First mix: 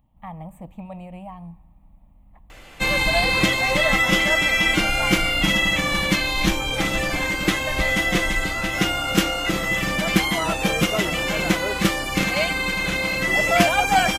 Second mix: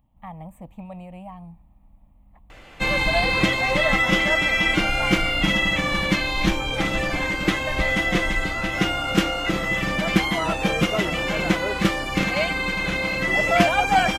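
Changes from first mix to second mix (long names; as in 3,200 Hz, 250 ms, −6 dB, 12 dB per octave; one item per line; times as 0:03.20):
speech: send off
background: add high-shelf EQ 6,100 Hz −12 dB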